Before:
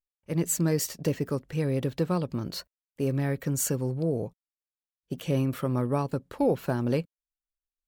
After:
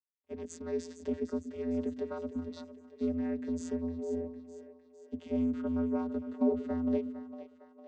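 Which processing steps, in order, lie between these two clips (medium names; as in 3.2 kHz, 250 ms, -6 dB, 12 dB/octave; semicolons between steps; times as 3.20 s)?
vocoder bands 16, square 84 Hz; two-band feedback delay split 390 Hz, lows 123 ms, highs 456 ms, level -11 dB; trim -5.5 dB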